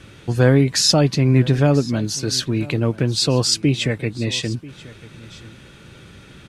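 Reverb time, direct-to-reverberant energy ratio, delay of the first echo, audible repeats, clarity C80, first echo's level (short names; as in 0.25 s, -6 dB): none, none, 0.988 s, 1, none, -20.0 dB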